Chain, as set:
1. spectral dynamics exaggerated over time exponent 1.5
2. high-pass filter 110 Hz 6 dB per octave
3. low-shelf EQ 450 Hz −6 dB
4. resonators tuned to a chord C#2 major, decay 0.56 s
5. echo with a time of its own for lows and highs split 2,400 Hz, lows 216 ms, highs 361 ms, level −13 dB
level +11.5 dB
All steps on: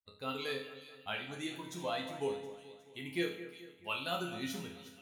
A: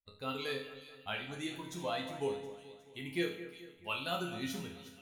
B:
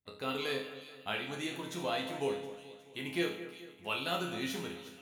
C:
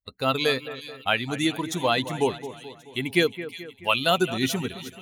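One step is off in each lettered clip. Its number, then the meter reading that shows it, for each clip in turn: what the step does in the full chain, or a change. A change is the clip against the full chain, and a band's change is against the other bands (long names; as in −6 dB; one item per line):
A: 2, 125 Hz band +2.0 dB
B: 1, change in integrated loudness +2.5 LU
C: 4, change in momentary loudness spread +2 LU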